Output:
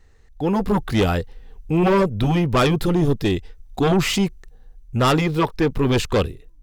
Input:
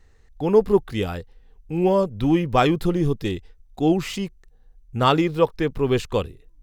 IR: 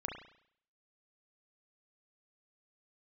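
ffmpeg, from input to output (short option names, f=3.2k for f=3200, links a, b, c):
-filter_complex "[0:a]afftfilt=real='re*lt(hypot(re,im),1.12)':imag='im*lt(hypot(re,im),1.12)':win_size=1024:overlap=0.75,dynaudnorm=f=480:g=3:m=11.5dB,asplit=2[a][b];[b]aeval=exprs='0.944*sin(PI/2*3.98*val(0)/0.944)':c=same,volume=-11dB[c];[a][c]amix=inputs=2:normalize=0,volume=-7.5dB"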